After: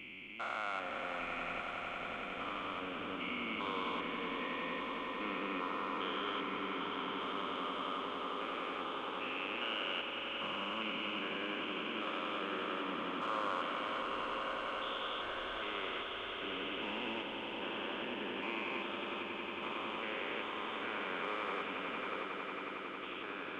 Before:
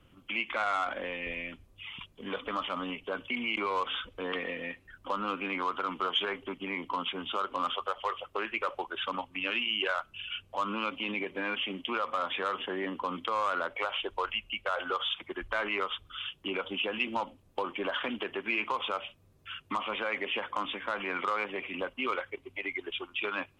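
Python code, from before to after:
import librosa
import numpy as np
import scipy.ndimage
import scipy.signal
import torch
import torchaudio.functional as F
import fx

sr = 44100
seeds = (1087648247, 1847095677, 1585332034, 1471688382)

y = fx.spec_steps(x, sr, hold_ms=400)
y = fx.bandpass_q(y, sr, hz=330.0, q=0.6, at=(22.23, 23.03))
y = fx.echo_swell(y, sr, ms=91, loudest=8, wet_db=-10.5)
y = y * 10.0 ** (-4.5 / 20.0)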